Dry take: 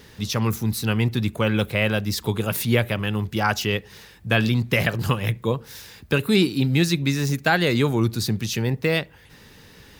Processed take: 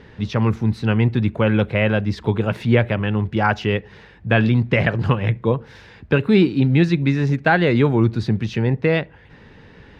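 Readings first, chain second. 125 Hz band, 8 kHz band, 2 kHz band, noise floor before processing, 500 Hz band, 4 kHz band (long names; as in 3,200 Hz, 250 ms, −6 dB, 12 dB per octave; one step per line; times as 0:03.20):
+4.5 dB, below −15 dB, +2.0 dB, −49 dBFS, +4.5 dB, −5.0 dB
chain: low-pass filter 2,100 Hz 12 dB per octave
parametric band 1,200 Hz −4 dB 0.25 octaves
level +4.5 dB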